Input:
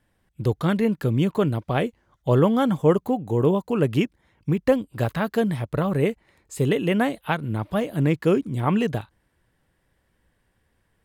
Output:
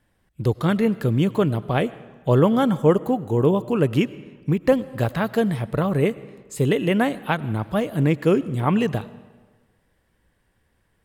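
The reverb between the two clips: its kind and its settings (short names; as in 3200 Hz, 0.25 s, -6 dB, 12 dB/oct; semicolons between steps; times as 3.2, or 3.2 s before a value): digital reverb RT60 1.4 s, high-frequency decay 0.75×, pre-delay 60 ms, DRR 18 dB; gain +1.5 dB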